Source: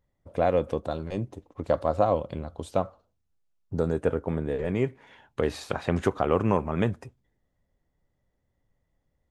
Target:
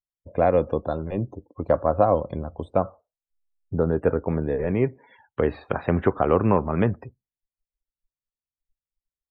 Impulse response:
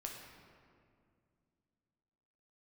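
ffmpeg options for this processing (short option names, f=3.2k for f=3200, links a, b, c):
-filter_complex "[0:a]acrossover=split=400|2600[a][b][c];[c]acompressor=threshold=-57dB:ratio=12[d];[a][b][d]amix=inputs=3:normalize=0,afftdn=nr=35:nf=-49,volume=4dB"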